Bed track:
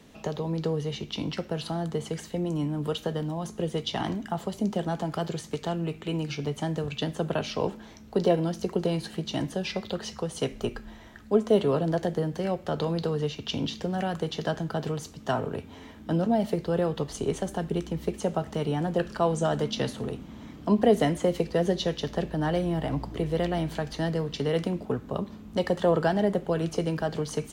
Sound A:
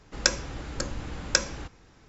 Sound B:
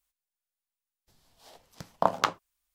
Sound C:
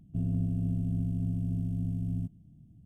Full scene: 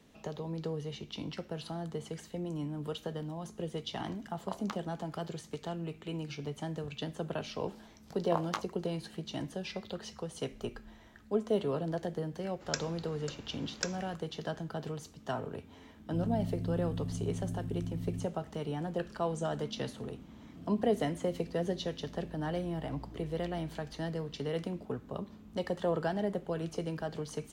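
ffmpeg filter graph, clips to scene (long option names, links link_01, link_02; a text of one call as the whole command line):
ffmpeg -i bed.wav -i cue0.wav -i cue1.wav -i cue2.wav -filter_complex "[2:a]asplit=2[link_01][link_02];[3:a]asplit=2[link_03][link_04];[0:a]volume=-8.5dB[link_05];[link_02]asplit=2[link_06][link_07];[link_07]adelay=19,volume=-6dB[link_08];[link_06][link_08]amix=inputs=2:normalize=0[link_09];[1:a]highpass=frequency=140:poles=1[link_10];[link_03]lowshelf=frequency=470:gain=-7[link_11];[link_04]highpass=300[link_12];[link_01]atrim=end=2.74,asetpts=PTS-STARTPTS,volume=-17dB,afade=type=in:duration=0.004:curve=hsin,afade=type=out:start_time=2.736:duration=0.004:curve=hsin,adelay=2460[link_13];[link_09]atrim=end=2.74,asetpts=PTS-STARTPTS,volume=-11dB,afade=type=in:duration=0.004:curve=hsin,afade=type=out:start_time=2.736:duration=0.004:curve=hsin,adelay=6300[link_14];[link_10]atrim=end=2.08,asetpts=PTS-STARTPTS,volume=-13dB,afade=type=in:duration=0.004:curve=hsin,afade=type=out:start_time=2.076:duration=0.004:curve=hsin,adelay=12480[link_15];[link_11]atrim=end=2.85,asetpts=PTS-STARTPTS,afade=type=in:duration=0.004:curve=hsin,afade=type=out:start_time=2.846:duration=0.004:curve=hsin,adelay=15990[link_16];[link_12]atrim=end=2.85,asetpts=PTS-STARTPTS,volume=-9.5dB,afade=type=in:duration=0.004:curve=hsin,afade=type=out:start_time=2.846:duration=0.004:curve=hsin,adelay=20410[link_17];[link_05][link_13][link_14][link_15][link_16][link_17]amix=inputs=6:normalize=0" out.wav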